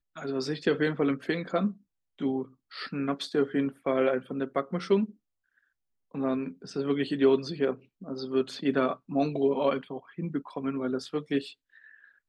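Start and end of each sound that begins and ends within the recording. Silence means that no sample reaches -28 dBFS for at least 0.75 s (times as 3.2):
6.15–11.39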